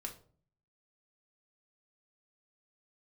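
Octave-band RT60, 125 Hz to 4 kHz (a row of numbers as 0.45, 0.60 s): 0.80, 0.65, 0.50, 0.40, 0.30, 0.30 s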